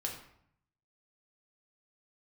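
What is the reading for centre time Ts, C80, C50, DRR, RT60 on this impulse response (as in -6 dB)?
28 ms, 9.0 dB, 6.0 dB, -1.0 dB, 0.70 s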